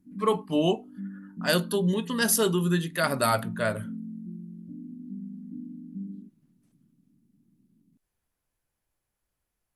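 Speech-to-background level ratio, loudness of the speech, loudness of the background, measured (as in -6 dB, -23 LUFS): 13.5 dB, -26.5 LUFS, -40.0 LUFS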